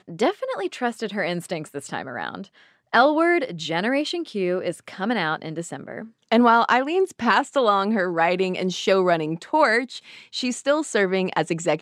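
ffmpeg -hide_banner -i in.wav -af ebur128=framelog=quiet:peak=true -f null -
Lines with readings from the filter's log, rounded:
Integrated loudness:
  I:         -22.2 LUFS
  Threshold: -32.7 LUFS
Loudness range:
  LRA:         3.9 LU
  Threshold: -42.2 LUFS
  LRA low:   -24.2 LUFS
  LRA high:  -20.3 LUFS
True peak:
  Peak:       -5.5 dBFS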